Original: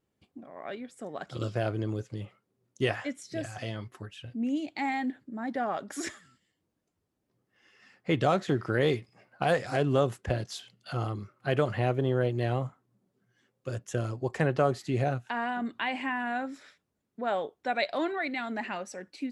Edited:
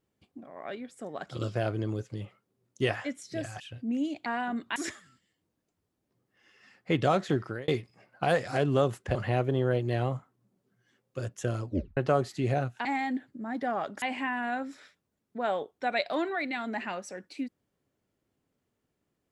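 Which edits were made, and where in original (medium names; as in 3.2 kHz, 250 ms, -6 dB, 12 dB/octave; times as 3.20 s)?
3.60–4.12 s: delete
4.78–5.95 s: swap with 15.35–15.85 s
8.54–8.87 s: fade out
10.34–11.65 s: delete
14.18 s: tape stop 0.29 s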